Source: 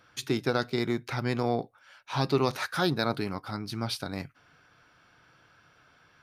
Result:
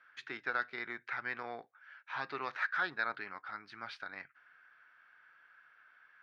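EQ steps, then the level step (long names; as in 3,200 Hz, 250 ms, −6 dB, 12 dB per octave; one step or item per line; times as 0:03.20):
resonant band-pass 1,700 Hz, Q 3.2
high-frequency loss of the air 99 metres
+3.5 dB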